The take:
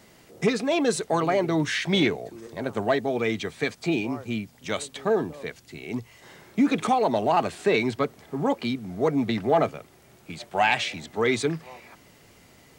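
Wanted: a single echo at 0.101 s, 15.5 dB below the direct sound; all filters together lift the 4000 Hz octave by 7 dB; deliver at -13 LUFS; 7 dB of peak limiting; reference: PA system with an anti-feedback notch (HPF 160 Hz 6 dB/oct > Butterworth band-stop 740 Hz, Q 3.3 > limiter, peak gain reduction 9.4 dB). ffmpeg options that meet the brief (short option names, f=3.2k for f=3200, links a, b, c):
-af "equalizer=f=4k:t=o:g=8.5,alimiter=limit=-13.5dB:level=0:latency=1,highpass=f=160:p=1,asuperstop=centerf=740:order=8:qfactor=3.3,aecho=1:1:101:0.168,volume=18.5dB,alimiter=limit=-3dB:level=0:latency=1"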